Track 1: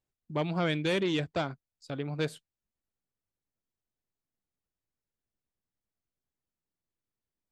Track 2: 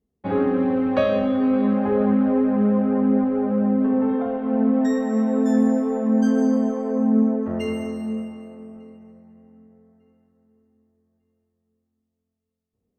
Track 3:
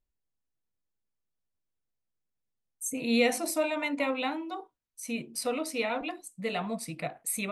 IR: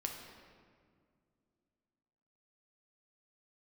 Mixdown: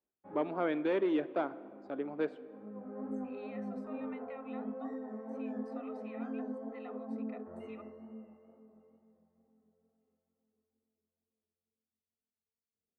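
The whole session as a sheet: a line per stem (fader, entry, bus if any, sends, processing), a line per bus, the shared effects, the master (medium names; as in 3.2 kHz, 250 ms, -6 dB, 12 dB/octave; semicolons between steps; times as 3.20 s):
-2.0 dB, 0.00 s, send -9.5 dB, Chebyshev high-pass 290 Hz, order 3
-12.5 dB, 0.00 s, no send, bass shelf 300 Hz -11 dB; chorus 2.2 Hz, delay 18.5 ms, depth 6.4 ms; auto duck -16 dB, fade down 0.85 s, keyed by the first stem
-10.0 dB, 0.30 s, no send, steep high-pass 790 Hz; comb 1.6 ms; compression, threshold -34 dBFS, peak gain reduction 10 dB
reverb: on, pre-delay 7 ms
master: low-pass 1.3 kHz 12 dB/octave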